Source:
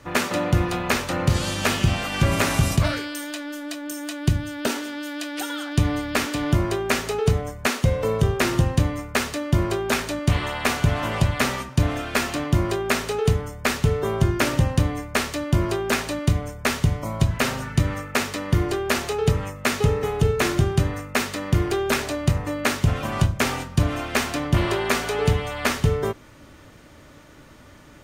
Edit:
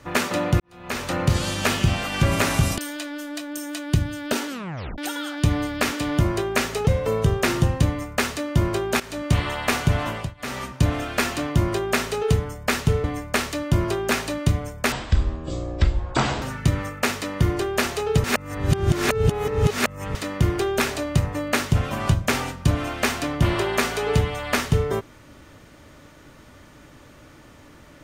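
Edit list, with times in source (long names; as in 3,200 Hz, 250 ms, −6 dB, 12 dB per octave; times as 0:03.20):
0:00.60–0:01.08: fade in quadratic
0:02.78–0:03.12: remove
0:04.82: tape stop 0.50 s
0:07.21–0:07.84: remove
0:09.97–0:10.22: fade in, from −15.5 dB
0:11.00–0:11.65: duck −23.5 dB, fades 0.31 s
0:14.01–0:14.85: remove
0:16.73–0:17.54: play speed 54%
0:19.36–0:21.27: reverse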